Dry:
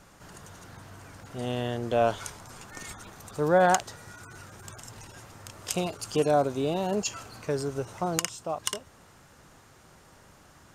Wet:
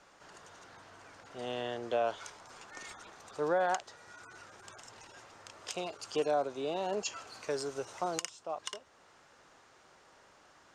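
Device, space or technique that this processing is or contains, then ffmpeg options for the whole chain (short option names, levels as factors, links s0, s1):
DJ mixer with the lows and highs turned down: -filter_complex "[0:a]acrossover=split=320 7500:gain=0.178 1 0.0708[s0][s1][s2];[s0][s1][s2]amix=inputs=3:normalize=0,alimiter=limit=0.133:level=0:latency=1:release=478,asettb=1/sr,asplit=3[s3][s4][s5];[s3]atrim=end=7.274[s6];[s4]atrim=start=7.27:end=8.3,asetpts=PTS-STARTPTS,afade=t=in:d=0.004:c=qsin,afade=t=out:st=1.026:d=0.004:c=qsin,highshelf=f=5100:g=10[s7];[s5]atrim=start=8.296[s8];[s6][s7]acrossfade=d=0.004:c1=hsin:c2=qsin[s9];[s9][s8]acrossfade=d=0.004:c1=qsin:c2=hsin,volume=0.668"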